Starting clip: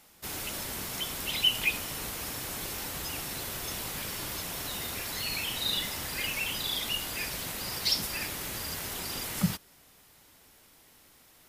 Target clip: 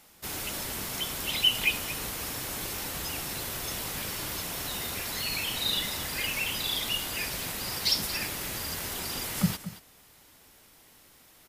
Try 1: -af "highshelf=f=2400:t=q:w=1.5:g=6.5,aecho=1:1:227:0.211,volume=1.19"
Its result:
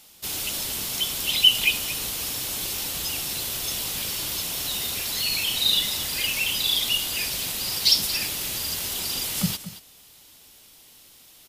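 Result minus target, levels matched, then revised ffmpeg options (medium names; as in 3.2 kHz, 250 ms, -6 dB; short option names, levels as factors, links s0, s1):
2 kHz band -3.5 dB
-af "aecho=1:1:227:0.211,volume=1.19"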